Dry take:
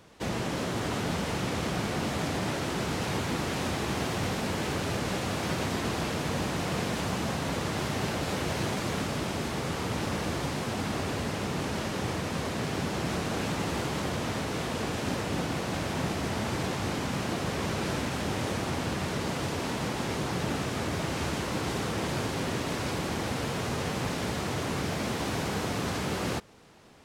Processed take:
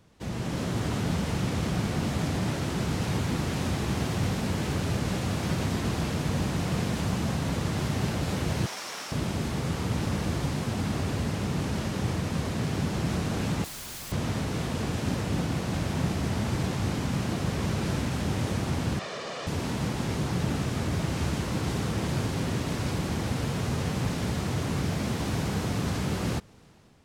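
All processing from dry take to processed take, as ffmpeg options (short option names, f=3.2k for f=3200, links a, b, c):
-filter_complex "[0:a]asettb=1/sr,asplit=3[a][b][c];[a]atrim=end=8.664[d];[b]atrim=start=8.66:end=9.12,asetpts=PTS-STARTPTS,afade=t=in:d=0.004:c=qsin,afade=t=out:st=0.456:d=0.004:c=qsin,equalizer=f=5.5k:t=o:w=0.21:g=8,acrusher=bits=8:mode=log:mix=0:aa=0.000001,highpass=770[e];[c]atrim=start=9.116[f];[d][e]acrossfade=d=0.004:c1=hsin:c2=qsin[g];[g][f]acrossfade=d=0.004:c1=qsin:c2=hsin,asettb=1/sr,asplit=3[h][i][j];[h]atrim=end=13.644[k];[i]atrim=start=13.64:end=14.12,asetpts=PTS-STARTPTS,afade=t=in:d=0.004:c=qsin,afade=t=out:st=0.476:d=0.004:c=qsin,asuperstop=centerf=1200:order=20:qfactor=0.74,aeval=exprs='(mod(50.1*val(0)+1,2)-1)/50.1':c=same[l];[j]atrim=start=14.116[m];[k][l]acrossfade=d=0.004:c1=hsin:c2=qsin[n];[n][m]acrossfade=d=0.004:c1=qsin:c2=hsin,asettb=1/sr,asplit=3[o][p][q];[o]atrim=end=18.994[r];[p]atrim=start=18.99:end=19.47,asetpts=PTS-STARTPTS,afade=t=in:d=0.004:c=qsin,afade=t=out:st=0.476:d=0.004:c=qsin,highpass=200,acrossover=split=330 7300:gain=0.178 1 0.0631[s][t][u];[s][t][u]amix=inputs=3:normalize=0,aecho=1:1:1.7:0.51,atrim=end_sample=21168[v];[q]atrim=start=19.466[w];[r][v]acrossfade=d=0.004:c1=hsin:c2=qsin[x];[x][w]acrossfade=d=0.004:c1=qsin:c2=hsin,dynaudnorm=f=120:g=7:m=6dB,bass=f=250:g=9,treble=f=4k:g=2,volume=-8.5dB"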